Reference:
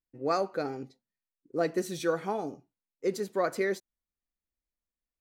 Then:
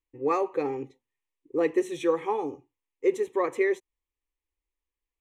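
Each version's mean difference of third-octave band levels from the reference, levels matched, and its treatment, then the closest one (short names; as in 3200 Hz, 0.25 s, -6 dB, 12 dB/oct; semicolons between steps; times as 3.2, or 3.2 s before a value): 5.0 dB: LPF 6800 Hz 12 dB/oct; fixed phaser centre 970 Hz, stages 8; in parallel at +1 dB: vocal rider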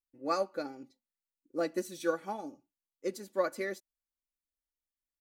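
3.0 dB: high shelf 6300 Hz +7.5 dB; comb 3.5 ms, depth 60%; upward expander 1.5:1, over -37 dBFS; gain -3 dB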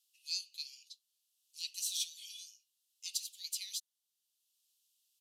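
22.5 dB: steep high-pass 2800 Hz 72 dB/oct; downsampling 32000 Hz; three-band squash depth 40%; gain +8.5 dB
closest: second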